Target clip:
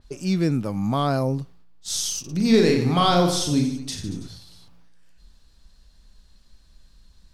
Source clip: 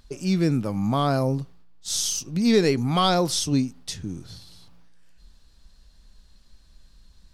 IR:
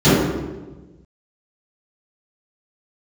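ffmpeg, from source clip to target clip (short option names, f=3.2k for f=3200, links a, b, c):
-filter_complex "[0:a]asettb=1/sr,asplit=3[a][b][c];[a]atrim=end=2.204[d];[b]atrim=start=2.2:end=4.28,asetpts=PTS-STARTPTS,afade=t=in:d=0.004:c=qsin,afade=t=out:st=2.076:d=0.004:c=qsin,aecho=1:1:40|90|152.5|230.6|328.3:0.631|0.398|0.251|0.158|0.1,atrim=end_sample=91728[e];[c]atrim=start=4.276[f];[d][e]acrossfade=d=0.004:c1=hsin:c2=qsin[g];[g][f]acrossfade=d=0.004:c1=qsin:c2=hsin,adynamicequalizer=threshold=0.0126:dfrequency=3700:dqfactor=0.7:tfrequency=3700:tqfactor=0.7:attack=5:release=100:ratio=0.375:range=1.5:mode=cutabove:tftype=highshelf"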